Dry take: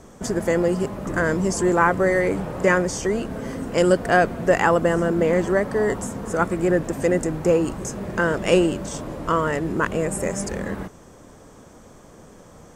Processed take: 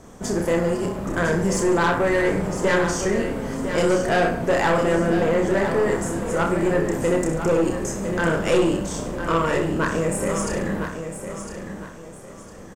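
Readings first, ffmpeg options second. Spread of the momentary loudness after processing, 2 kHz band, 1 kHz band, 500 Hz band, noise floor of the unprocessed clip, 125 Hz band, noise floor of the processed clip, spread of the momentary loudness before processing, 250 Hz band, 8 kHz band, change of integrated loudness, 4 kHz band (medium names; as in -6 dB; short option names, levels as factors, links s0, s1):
13 LU, -0.5 dB, -0.5 dB, 0.0 dB, -47 dBFS, +0.5 dB, -41 dBFS, 10 LU, +0.5 dB, +1.5 dB, 0.0 dB, +2.0 dB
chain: -filter_complex "[0:a]asplit=2[s0][s1];[s1]aecho=0:1:30|63|99.3|139.2|183.2:0.631|0.398|0.251|0.158|0.1[s2];[s0][s2]amix=inputs=2:normalize=0,aeval=exprs='(tanh(5.01*val(0)+0.25)-tanh(0.25))/5.01':c=same,asplit=2[s3][s4];[s4]aecho=0:1:1006|2012|3018|4024:0.355|0.11|0.0341|0.0106[s5];[s3][s5]amix=inputs=2:normalize=0"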